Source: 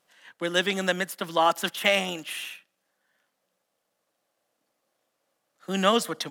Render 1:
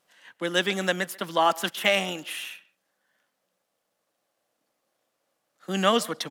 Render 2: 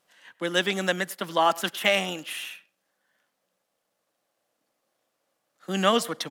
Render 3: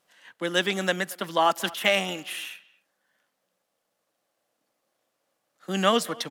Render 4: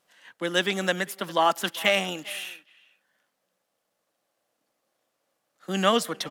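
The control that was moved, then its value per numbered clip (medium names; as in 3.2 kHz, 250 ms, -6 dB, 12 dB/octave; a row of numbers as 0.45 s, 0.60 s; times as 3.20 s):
speakerphone echo, time: 140 ms, 100 ms, 230 ms, 400 ms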